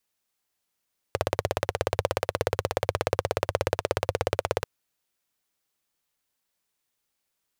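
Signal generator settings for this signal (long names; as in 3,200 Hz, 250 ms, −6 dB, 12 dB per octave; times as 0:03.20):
pulse-train model of a single-cylinder engine, steady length 3.49 s, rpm 2,000, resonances 97/500 Hz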